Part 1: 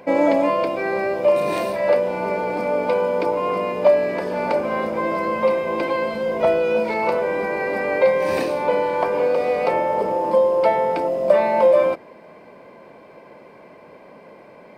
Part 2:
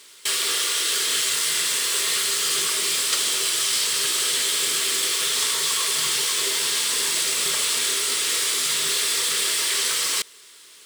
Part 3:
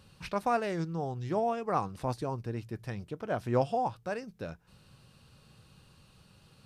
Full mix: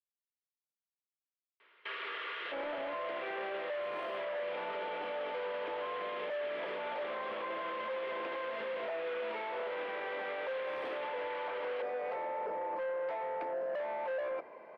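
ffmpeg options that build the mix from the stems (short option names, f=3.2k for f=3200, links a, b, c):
-filter_complex "[0:a]asoftclip=type=tanh:threshold=-19.5dB,adelay=2450,volume=-5.5dB[a];[1:a]lowpass=f=2.9k:w=0.5412,lowpass=f=2.9k:w=1.3066,adelay=1600,volume=-6.5dB[b];[a][b]amix=inputs=2:normalize=0,acrossover=split=390 2700:gain=0.141 1 0.0794[c][d][e];[c][d][e]amix=inputs=3:normalize=0,alimiter=level_in=7.5dB:limit=-24dB:level=0:latency=1:release=16,volume=-7.5dB"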